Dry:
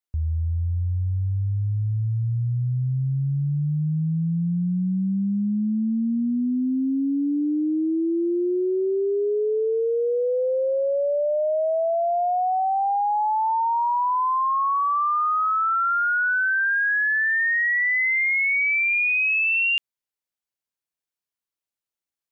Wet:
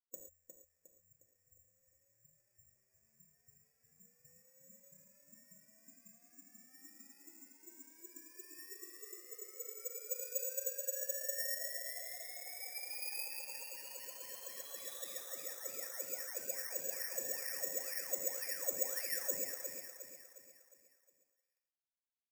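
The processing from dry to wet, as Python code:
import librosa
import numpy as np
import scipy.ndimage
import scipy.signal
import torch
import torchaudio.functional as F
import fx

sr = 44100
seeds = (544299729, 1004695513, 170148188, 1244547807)

p1 = scipy.signal.medfilt(x, 15)
p2 = fx.highpass(p1, sr, hz=340.0, slope=6)
p3 = fx.spec_gate(p2, sr, threshold_db=-20, keep='weak')
p4 = fx.formant_cascade(p3, sr, vowel='e')
p5 = fx.high_shelf(p4, sr, hz=2400.0, db=-10.5)
p6 = fx.quant_float(p5, sr, bits=2)
p7 = p5 + (p6 * 10.0 ** (-10.5 / 20.0))
p8 = fx.rider(p7, sr, range_db=3, speed_s=2.0)
p9 = p8 + fx.echo_feedback(p8, sr, ms=358, feedback_pct=45, wet_db=-8.0, dry=0)
p10 = fx.rev_gated(p9, sr, seeds[0], gate_ms=150, shape='flat', drr_db=1.5)
p11 = (np.kron(p10[::6], np.eye(6)[0]) * 6)[:len(p10)]
y = p11 * 10.0 ** (12.0 / 20.0)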